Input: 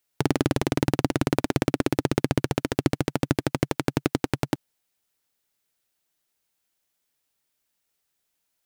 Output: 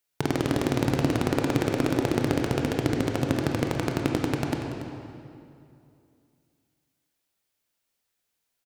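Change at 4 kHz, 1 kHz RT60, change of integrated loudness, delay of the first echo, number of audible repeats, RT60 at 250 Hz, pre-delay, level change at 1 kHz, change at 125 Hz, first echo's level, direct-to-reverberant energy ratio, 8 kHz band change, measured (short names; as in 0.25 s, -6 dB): -1.0 dB, 2.4 s, -0.5 dB, 0.284 s, 1, 2.6 s, 20 ms, -0.5 dB, 0.0 dB, -13.0 dB, 1.0 dB, -2.0 dB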